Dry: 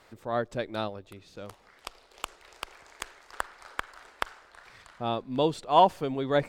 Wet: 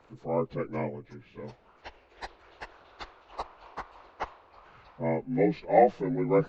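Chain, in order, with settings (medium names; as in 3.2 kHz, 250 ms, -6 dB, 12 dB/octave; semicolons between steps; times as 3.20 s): frequency axis rescaled in octaves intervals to 81%; tilt EQ -1.5 dB/octave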